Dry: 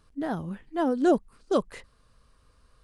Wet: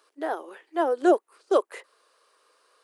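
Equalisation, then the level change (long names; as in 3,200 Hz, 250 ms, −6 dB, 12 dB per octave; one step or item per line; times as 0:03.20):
Butterworth high-pass 350 Hz 48 dB per octave
dynamic equaliser 4,800 Hz, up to −7 dB, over −55 dBFS, Q 1
+4.5 dB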